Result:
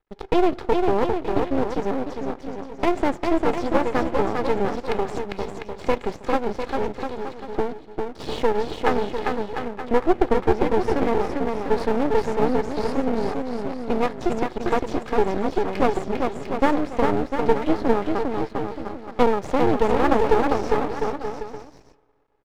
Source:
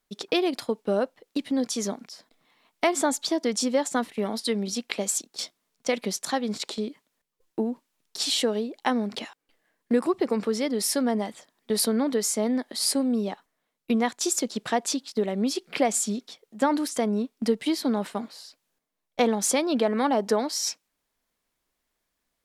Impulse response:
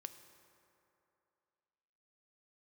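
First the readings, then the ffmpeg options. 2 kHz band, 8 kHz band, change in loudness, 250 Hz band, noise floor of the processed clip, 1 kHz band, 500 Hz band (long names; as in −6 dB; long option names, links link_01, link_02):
+4.0 dB, below −15 dB, +2.5 dB, +2.0 dB, −44 dBFS, +7.5 dB, +6.0 dB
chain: -filter_complex "[0:a]aecho=1:1:2.4:0.63,asplit=2[link_01][link_02];[link_02]acrusher=samples=32:mix=1:aa=0.000001,volume=-10dB[link_03];[link_01][link_03]amix=inputs=2:normalize=0,lowpass=1600,aecho=1:1:400|700|925|1094|1220:0.631|0.398|0.251|0.158|0.1,asplit=2[link_04][link_05];[1:a]atrim=start_sample=2205[link_06];[link_05][link_06]afir=irnorm=-1:irlink=0,volume=-8dB[link_07];[link_04][link_07]amix=inputs=2:normalize=0,aeval=exprs='max(val(0),0)':channel_layout=same,volume=3.5dB"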